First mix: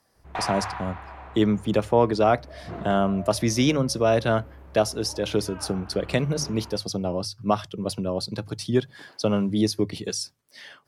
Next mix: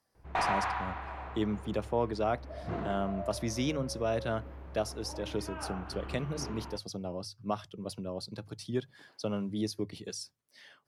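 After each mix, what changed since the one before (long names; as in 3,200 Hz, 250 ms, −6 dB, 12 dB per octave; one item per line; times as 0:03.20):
speech −11.0 dB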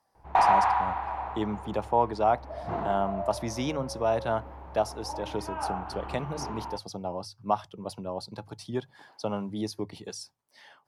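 master: add parametric band 860 Hz +13.5 dB 0.72 octaves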